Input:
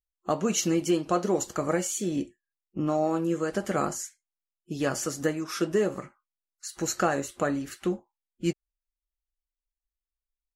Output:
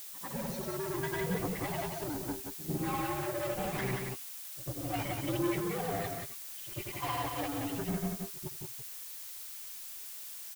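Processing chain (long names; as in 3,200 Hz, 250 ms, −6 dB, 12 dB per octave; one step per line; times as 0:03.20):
partials spread apart or drawn together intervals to 129%
low-pass filter 3,100 Hz
reversed playback
downward compressor, threshold −39 dBFS, peak gain reduction 16 dB
reversed playback
brickwall limiter −34.5 dBFS, peak gain reduction 5.5 dB
automatic gain control gain up to 9.5 dB
hard clipping −36 dBFS, distortion −8 dB
phase shifter 0.74 Hz, delay 1.8 ms, feedback 43%
granular cloud 100 ms, pitch spread up and down by 0 semitones
echo ahead of the sound 95 ms −14.5 dB
background noise blue −49 dBFS
on a send: single-tap delay 179 ms −4.5 dB
on the sum: level +3 dB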